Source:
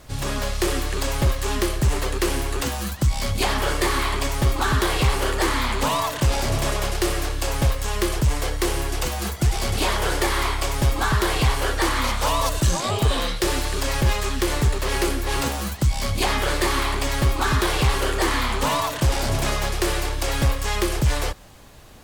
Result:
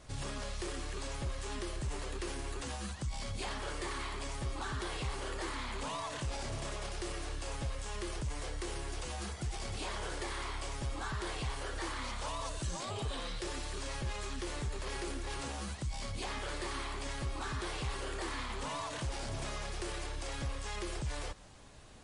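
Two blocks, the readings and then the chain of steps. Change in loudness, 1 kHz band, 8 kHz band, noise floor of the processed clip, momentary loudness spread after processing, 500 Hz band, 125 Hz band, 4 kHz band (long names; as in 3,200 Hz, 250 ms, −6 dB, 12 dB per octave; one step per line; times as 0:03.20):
−16.5 dB, −16.5 dB, −16.0 dB, −42 dBFS, 2 LU, −16.5 dB, −17.5 dB, −16.0 dB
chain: brickwall limiter −22 dBFS, peak gain reduction 9.5 dB
level −8.5 dB
MP3 40 kbit/s 24,000 Hz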